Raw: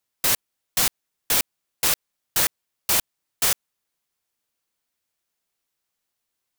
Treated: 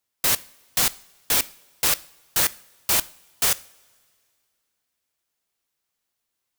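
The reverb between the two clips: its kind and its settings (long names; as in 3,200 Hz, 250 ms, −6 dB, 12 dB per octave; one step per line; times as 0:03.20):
coupled-rooms reverb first 0.5 s, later 2.4 s, from −18 dB, DRR 17 dB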